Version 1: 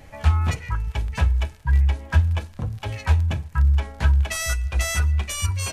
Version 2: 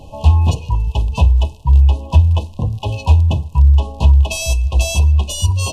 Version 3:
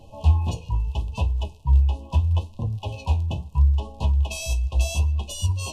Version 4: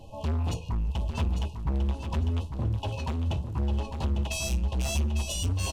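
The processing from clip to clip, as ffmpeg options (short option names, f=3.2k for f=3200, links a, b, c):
-af "afftfilt=real='re*(1-between(b*sr/4096,1100,2500))':imag='im*(1-between(b*sr/4096,1100,2500))':win_size=4096:overlap=0.75,highshelf=f=6.3k:g=-8.5,acontrast=69,volume=2.5dB"
-af "flanger=delay=8.7:depth=9.4:regen=48:speed=0.76:shape=sinusoidal,volume=-5.5dB"
-filter_complex "[0:a]volume=25.5dB,asoftclip=hard,volume=-25.5dB,asplit=2[a][b];[b]aecho=0:1:850|1700|2550:0.422|0.0928|0.0204[c];[a][c]amix=inputs=2:normalize=0"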